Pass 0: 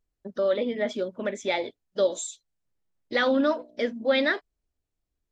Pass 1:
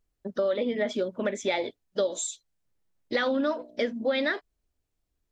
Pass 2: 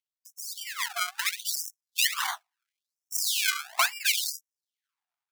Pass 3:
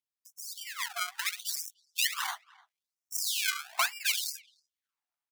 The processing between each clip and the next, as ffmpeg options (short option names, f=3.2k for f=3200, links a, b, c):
-af "acompressor=threshold=-26dB:ratio=6,volume=3dB"
-af "dynaudnorm=f=450:g=5:m=13dB,acrusher=samples=33:mix=1:aa=0.000001:lfo=1:lforange=33:lforate=1.2,afftfilt=real='re*gte(b*sr/1024,640*pow(5300/640,0.5+0.5*sin(2*PI*0.73*pts/sr)))':imag='im*gte(b*sr/1024,640*pow(5300/640,0.5+0.5*sin(2*PI*0.73*pts/sr)))':win_size=1024:overlap=0.75,volume=-1.5dB"
-filter_complex "[0:a]asplit=2[a][b];[b]adelay=300,highpass=300,lowpass=3.4k,asoftclip=type=hard:threshold=-18.5dB,volume=-24dB[c];[a][c]amix=inputs=2:normalize=0,volume=-4dB"